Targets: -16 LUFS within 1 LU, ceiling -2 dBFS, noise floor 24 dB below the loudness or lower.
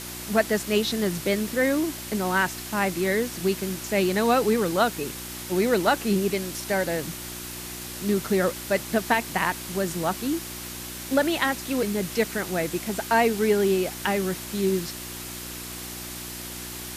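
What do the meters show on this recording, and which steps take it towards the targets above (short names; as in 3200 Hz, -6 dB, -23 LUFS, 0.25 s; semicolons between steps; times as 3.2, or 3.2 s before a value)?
hum 60 Hz; harmonics up to 360 Hz; hum level -39 dBFS; noise floor -37 dBFS; noise floor target -50 dBFS; loudness -25.5 LUFS; peak -8.5 dBFS; loudness target -16.0 LUFS
-> de-hum 60 Hz, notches 6; noise print and reduce 13 dB; gain +9.5 dB; limiter -2 dBFS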